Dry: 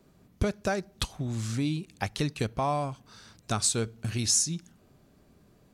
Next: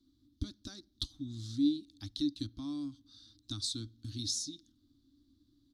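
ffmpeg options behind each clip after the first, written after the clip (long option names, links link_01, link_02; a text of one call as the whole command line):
ffmpeg -i in.wav -af "firequalizer=gain_entry='entry(110,0);entry(170,-20);entry(290,14);entry(420,-27);entry(760,-24);entry(1200,-14);entry(2500,-20);entry(3600,9);entry(7400,-8)':delay=0.05:min_phase=1,volume=-9dB" out.wav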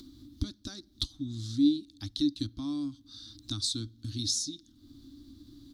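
ffmpeg -i in.wav -af "acompressor=mode=upward:threshold=-44dB:ratio=2.5,volume=5dB" out.wav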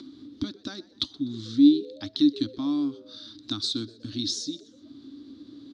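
ffmpeg -i in.wav -filter_complex "[0:a]highpass=230,lowpass=3300,asplit=4[link_01][link_02][link_03][link_04];[link_02]adelay=124,afreqshift=110,volume=-22dB[link_05];[link_03]adelay=248,afreqshift=220,volume=-29.3dB[link_06];[link_04]adelay=372,afreqshift=330,volume=-36.7dB[link_07];[link_01][link_05][link_06][link_07]amix=inputs=4:normalize=0,volume=9dB" out.wav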